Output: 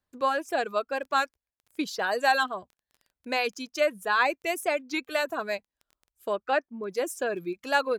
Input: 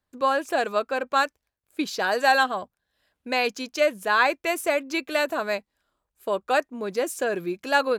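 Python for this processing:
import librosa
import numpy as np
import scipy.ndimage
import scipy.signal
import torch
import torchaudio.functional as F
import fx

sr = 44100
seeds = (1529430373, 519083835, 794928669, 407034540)

y = fx.dereverb_blind(x, sr, rt60_s=1.1)
y = fx.lowpass(y, sr, hz=fx.line((6.32, 4700.0), (6.88, 2200.0)), slope=12, at=(6.32, 6.88), fade=0.02)
y = fx.dmg_crackle(y, sr, seeds[0], per_s=11.0, level_db=-40.0)
y = fx.record_warp(y, sr, rpm=33.33, depth_cents=100.0)
y = F.gain(torch.from_numpy(y), -3.0).numpy()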